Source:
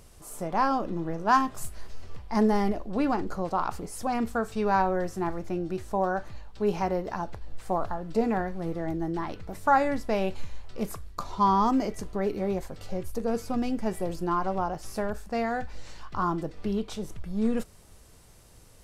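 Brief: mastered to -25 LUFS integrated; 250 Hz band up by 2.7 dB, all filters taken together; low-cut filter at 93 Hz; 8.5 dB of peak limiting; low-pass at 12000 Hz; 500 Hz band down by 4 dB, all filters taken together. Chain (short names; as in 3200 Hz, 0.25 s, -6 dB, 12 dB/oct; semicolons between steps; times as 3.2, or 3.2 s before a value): HPF 93 Hz; LPF 12000 Hz; bell 250 Hz +5 dB; bell 500 Hz -7 dB; gain +6 dB; limiter -13.5 dBFS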